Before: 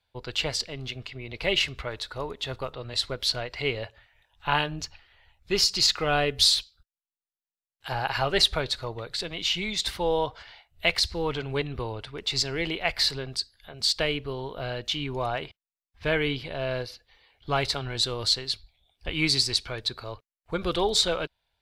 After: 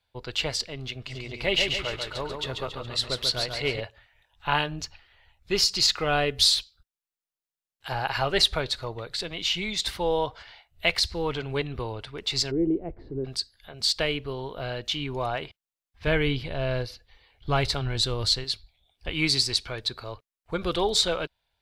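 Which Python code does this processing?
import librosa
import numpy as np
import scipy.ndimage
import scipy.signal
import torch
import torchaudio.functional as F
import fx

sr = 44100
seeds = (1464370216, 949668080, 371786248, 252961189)

y = fx.echo_feedback(x, sr, ms=139, feedback_pct=49, wet_db=-5, at=(1.06, 3.79), fade=0.02)
y = fx.lowpass_res(y, sr, hz=340.0, q=3.4, at=(12.5, 13.24), fade=0.02)
y = fx.low_shelf(y, sr, hz=150.0, db=10.0, at=(16.07, 18.44))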